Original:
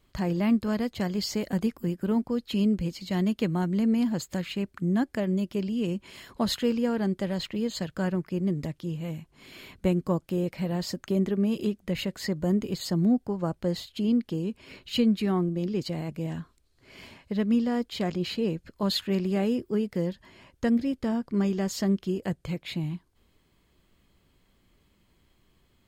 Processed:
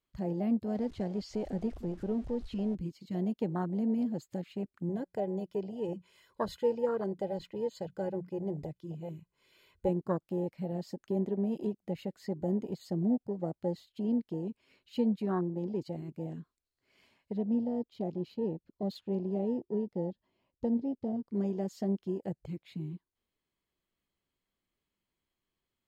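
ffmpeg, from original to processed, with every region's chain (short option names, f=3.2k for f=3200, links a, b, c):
-filter_complex "[0:a]asettb=1/sr,asplit=3[a][b][c];[a]atrim=end=0.754[d];[b]atrim=start=0.75:end=2.75,asetpts=PTS-STARTPTS,afade=t=in:d=0.004:c=qsin,afade=t=out:st=1.996:d=0.004:c=qsin,aeval=exprs='val(0)+0.5*0.0211*sgn(val(0))':c=same,lowpass=6.7k,asubboost=boost=10:cutoff=73[e];[c]atrim=start=2.746[f];[d][e]acrossfade=d=0.004:c1=hsin:c2=qsin[g];[g][f]acrossfade=d=0.004:c1=qsin:c2=hsin,asettb=1/sr,asplit=3[h][i][j];[h]atrim=end=4.894[k];[i]atrim=start=4.89:end=9.89,asetpts=PTS-STARTPTS,afade=t=in:d=0.004:c=qsin,afade=t=out:st=4.996:d=0.004:c=qsin,bandreject=f=60:t=h:w=6,bandreject=f=120:t=h:w=6,bandreject=f=180:t=h:w=6,aecho=1:1:2:0.61,atrim=end_sample=220500[l];[j]atrim=start=9.886[m];[k][l]acrossfade=d=0.004:c1=hsin:c2=qsin[n];[n][m]acrossfade=d=0.004:c1=qsin:c2=hsin,asettb=1/sr,asplit=3[o][p][q];[o]atrim=end=17.384[r];[p]atrim=start=17.38:end=21.28,asetpts=PTS-STARTPTS,afade=t=in:d=0.004:c=qsin,afade=t=out:st=3.896:d=0.004:c=qsin,equalizer=f=1.7k:t=o:w=1.1:g=-11.5,adynamicsmooth=sensitivity=7:basefreq=3.7k[s];[q]atrim=start=21.276[t];[r][s]acrossfade=d=0.004:c1=hsin:c2=qsin[u];[u][t]acrossfade=d=0.004:c1=qsin:c2=hsin,afwtdn=0.0398,lowshelf=f=220:g=-9,volume=-2dB"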